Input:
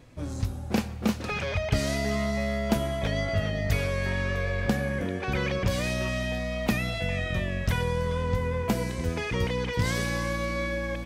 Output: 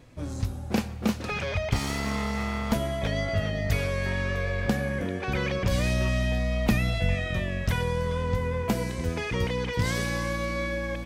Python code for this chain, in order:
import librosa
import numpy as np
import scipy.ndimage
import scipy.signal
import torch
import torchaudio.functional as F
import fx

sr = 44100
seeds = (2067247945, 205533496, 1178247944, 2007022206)

y = fx.lower_of_two(x, sr, delay_ms=0.9, at=(1.71, 2.73))
y = fx.low_shelf(y, sr, hz=120.0, db=10.0, at=(5.71, 7.15))